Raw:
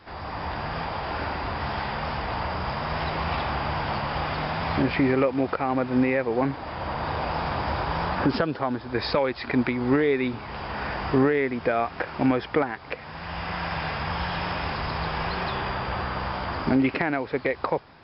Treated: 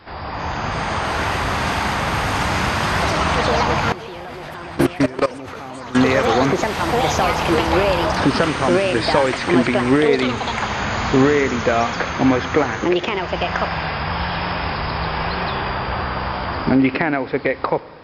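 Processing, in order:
spring reverb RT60 1.7 s, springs 34/59 ms, DRR 18 dB
delay with pitch and tempo change per echo 339 ms, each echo +5 semitones, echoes 3
0:03.92–0:05.95: output level in coarse steps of 19 dB
level +6 dB

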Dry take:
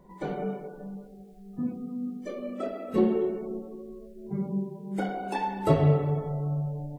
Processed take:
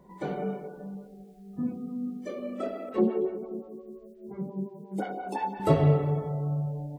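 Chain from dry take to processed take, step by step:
high-pass filter 48 Hz 12 dB per octave
0:02.89–0:05.60: phaser with staggered stages 5.7 Hz

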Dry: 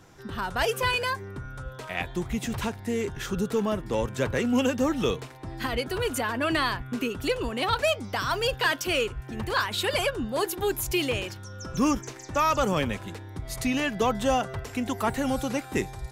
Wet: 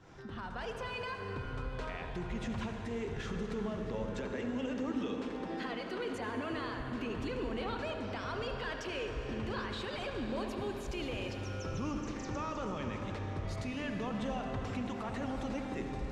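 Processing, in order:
fade in at the beginning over 2.19 s
0:04.13–0:06.14: Butterworth high-pass 170 Hz 72 dB per octave
upward compression, threshold −26 dBFS
brickwall limiter −25.5 dBFS, peak gain reduction 11.5 dB
high-frequency loss of the air 110 metres
feedback echo with a low-pass in the loop 73 ms, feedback 78%, low-pass 2,000 Hz, level −8.5 dB
convolution reverb RT60 5.9 s, pre-delay 76 ms, DRR 4.5 dB
level −6 dB

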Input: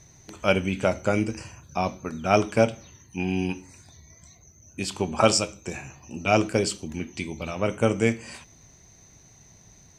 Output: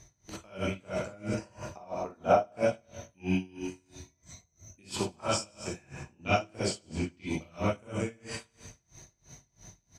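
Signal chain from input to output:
0:01.34–0:02.39: parametric band 620 Hz +14.5 dB 1.7 octaves
0:05.79–0:07.25: low-pass that shuts in the quiet parts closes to 2,700 Hz, open at −17.5 dBFS
downward compressor 5 to 1, threshold −25 dBFS, peak gain reduction 20.5 dB
repeating echo 101 ms, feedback 58%, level −10 dB
reverb whose tail is shaped and stops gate 80 ms rising, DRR −6 dB
tremolo with a sine in dB 3 Hz, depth 29 dB
level −3 dB

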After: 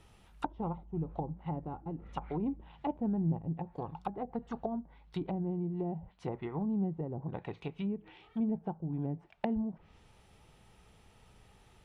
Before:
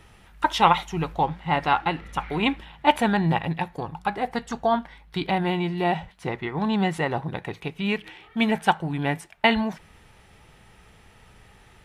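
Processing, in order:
treble cut that deepens with the level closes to 350 Hz, closed at −21.5 dBFS
parametric band 1,800 Hz −7 dB 0.83 octaves
level −7.5 dB

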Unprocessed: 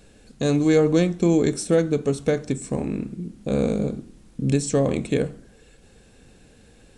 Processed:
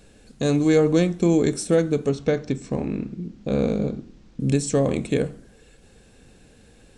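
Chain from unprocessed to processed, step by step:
0:02.09–0:04.40: low-pass filter 6,100 Hz 24 dB per octave

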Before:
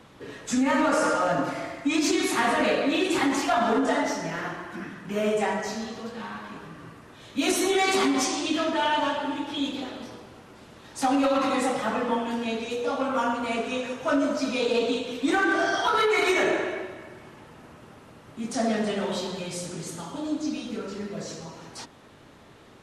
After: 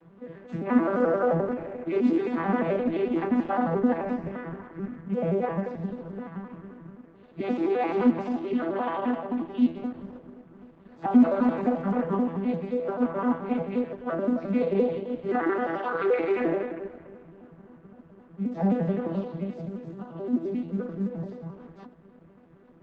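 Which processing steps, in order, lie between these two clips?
vocoder with an arpeggio as carrier minor triad, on E3, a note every 87 ms
low-pass filter 2,100 Hz 12 dB per octave
0:01.00–0:01.98: parametric band 510 Hz +8 dB 0.55 octaves
on a send at −19 dB: convolution reverb RT60 2.7 s, pre-delay 4 ms
on the sum: Opus 12 kbit/s 48,000 Hz

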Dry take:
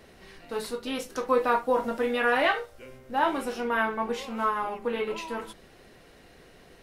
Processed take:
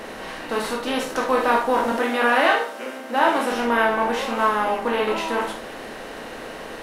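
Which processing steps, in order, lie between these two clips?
compressor on every frequency bin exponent 0.6
0:01.92–0:03.52: Butterworth high-pass 190 Hz 36 dB per octave
convolution reverb, pre-delay 3 ms, DRR 3.5 dB
level +2 dB

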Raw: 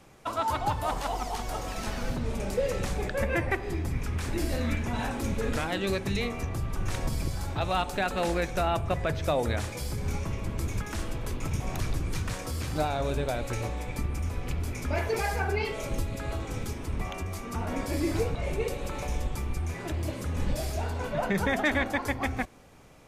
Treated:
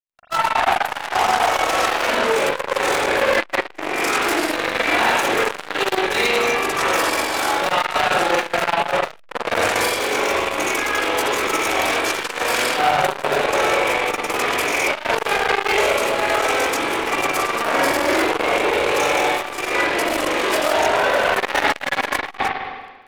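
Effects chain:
Butterworth high-pass 310 Hz 36 dB per octave
low-shelf EQ 430 Hz −10 dB
in parallel at +1.5 dB: downward compressor, threshold −39 dBFS, peak gain reduction 15.5 dB
on the sum: flanger 0.42 Hz, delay 3.5 ms, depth 7.6 ms, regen −80%
fuzz pedal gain 40 dB, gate −48 dBFS
amplitude modulation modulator 44 Hz, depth 45%
granular cloud, spray 100 ms, pitch spread up and down by 0 semitones
convolution reverb RT60 1.1 s, pre-delay 40 ms, DRR −6.5 dB
saturating transformer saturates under 1,600 Hz
level −1 dB

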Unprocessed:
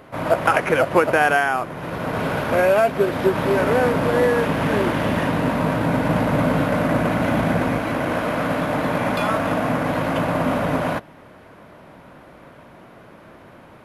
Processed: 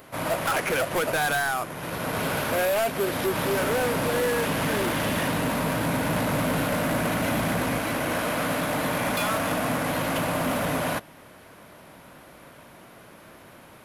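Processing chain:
first-order pre-emphasis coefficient 0.8
gain into a clipping stage and back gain 30 dB
level +9 dB

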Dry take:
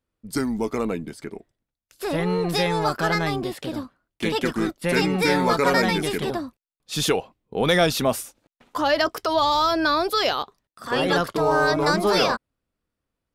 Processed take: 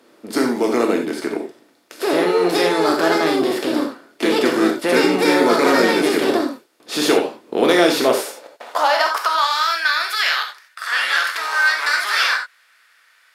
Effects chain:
compressor on every frequency bin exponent 0.6
reverb whose tail is shaped and stops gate 110 ms flat, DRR 2 dB
high-pass filter sweep 310 Hz → 1,700 Hz, 0:07.91–0:09.75
level −2.5 dB

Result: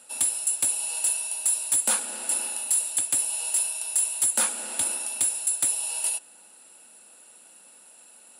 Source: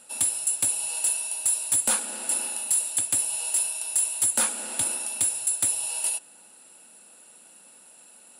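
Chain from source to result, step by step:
high-pass filter 240 Hz 6 dB per octave

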